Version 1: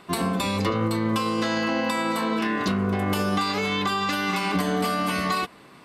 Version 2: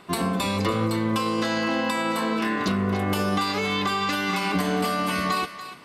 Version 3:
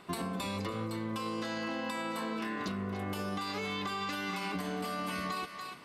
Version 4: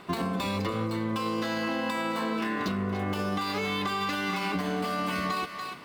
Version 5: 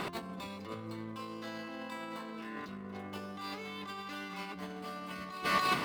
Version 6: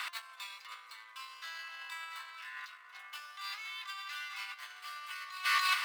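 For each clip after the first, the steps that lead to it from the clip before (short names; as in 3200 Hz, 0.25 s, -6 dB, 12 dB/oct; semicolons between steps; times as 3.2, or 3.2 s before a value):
thinning echo 0.288 s, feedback 29%, high-pass 900 Hz, level -11 dB
compressor, threshold -28 dBFS, peak gain reduction 9 dB; gain -5 dB
median filter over 5 samples; gain +6.5 dB
negative-ratio compressor -38 dBFS, ratio -0.5; notches 50/100 Hz; gain +1 dB
HPF 1300 Hz 24 dB/oct; gain +4 dB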